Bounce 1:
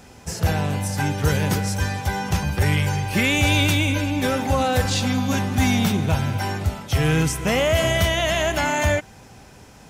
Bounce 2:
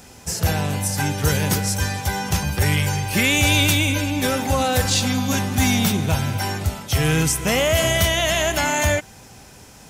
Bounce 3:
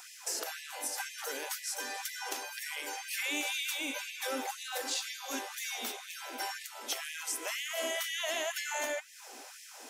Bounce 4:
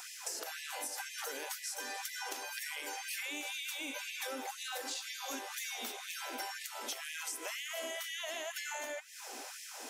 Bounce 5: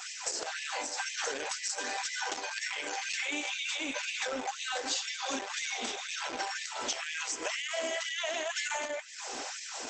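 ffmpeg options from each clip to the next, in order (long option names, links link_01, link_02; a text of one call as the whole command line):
ffmpeg -i in.wav -af "highshelf=frequency=4400:gain=9" out.wav
ffmpeg -i in.wav -af "acompressor=threshold=-29dB:ratio=5,flanger=delay=7.4:depth=4.9:regen=-78:speed=1.4:shape=sinusoidal,afftfilt=real='re*gte(b*sr/1024,230*pow(1700/230,0.5+0.5*sin(2*PI*2*pts/sr)))':imag='im*gte(b*sr/1024,230*pow(1700/230,0.5+0.5*sin(2*PI*2*pts/sr)))':win_size=1024:overlap=0.75,volume=2dB" out.wav
ffmpeg -i in.wav -af "acompressor=threshold=-41dB:ratio=6,volume=3dB" out.wav
ffmpeg -i in.wav -filter_complex "[0:a]asplit=2[link_01][link_02];[link_02]aeval=exprs='(mod(28.2*val(0)+1,2)-1)/28.2':channel_layout=same,volume=-9dB[link_03];[link_01][link_03]amix=inputs=2:normalize=0,volume=5dB" -ar 48000 -c:a libopus -b:a 12k out.opus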